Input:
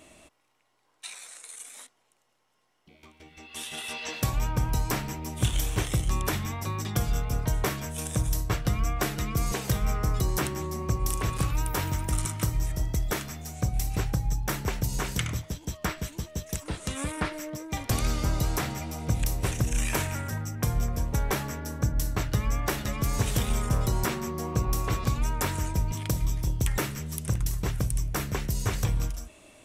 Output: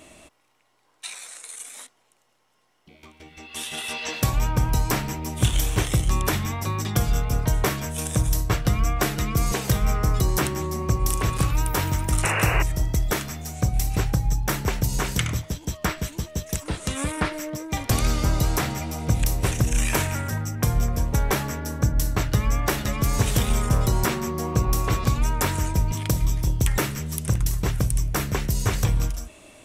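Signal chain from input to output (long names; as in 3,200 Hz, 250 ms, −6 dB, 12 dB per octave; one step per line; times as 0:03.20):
sound drawn into the spectrogram noise, 0:12.23–0:12.63, 310–2,900 Hz −30 dBFS
level +5 dB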